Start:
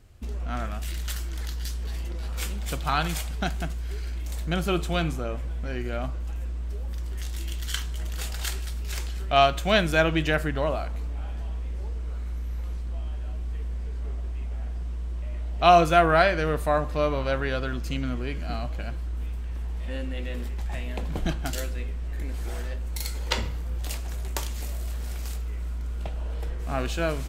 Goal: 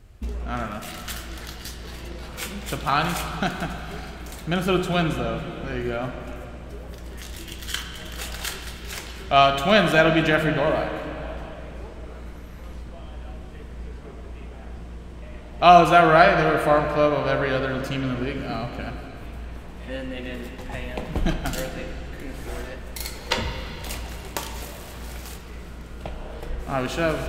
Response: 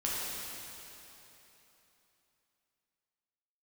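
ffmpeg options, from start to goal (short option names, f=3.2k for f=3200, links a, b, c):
-filter_complex "[0:a]asplit=2[a][b];[1:a]atrim=start_sample=2205,lowpass=4k[c];[b][c]afir=irnorm=-1:irlink=0,volume=-8.5dB[d];[a][d]amix=inputs=2:normalize=0,volume=1.5dB"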